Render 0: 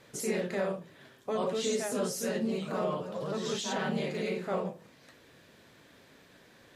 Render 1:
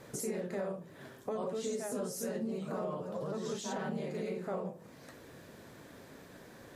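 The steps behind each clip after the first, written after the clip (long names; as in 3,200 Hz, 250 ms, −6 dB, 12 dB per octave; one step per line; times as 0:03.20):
parametric band 3,100 Hz −9 dB 1.8 octaves
downward compressor 2.5 to 1, threshold −47 dBFS, peak gain reduction 13.5 dB
level +7 dB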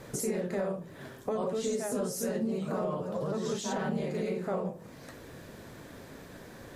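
low-shelf EQ 66 Hz +10.5 dB
level +4.5 dB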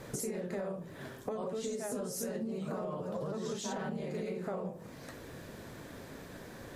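downward compressor, threshold −34 dBFS, peak gain reduction 7.5 dB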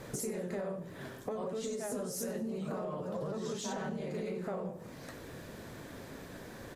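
in parallel at −9 dB: soft clipping −36.5 dBFS, distortion −12 dB
on the sum: repeating echo 95 ms, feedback 44%, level −18 dB
level −2 dB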